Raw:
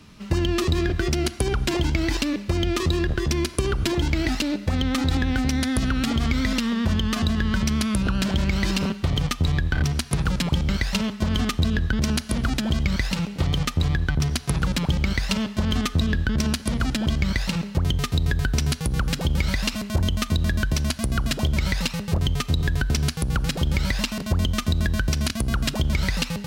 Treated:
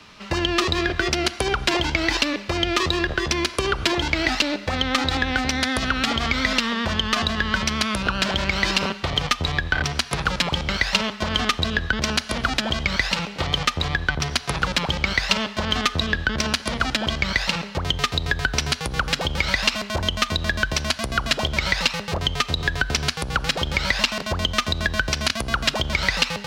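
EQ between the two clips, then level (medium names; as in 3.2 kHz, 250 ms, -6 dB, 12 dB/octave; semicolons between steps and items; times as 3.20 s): three-band isolator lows -14 dB, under 470 Hz, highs -13 dB, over 6.1 kHz; +8.0 dB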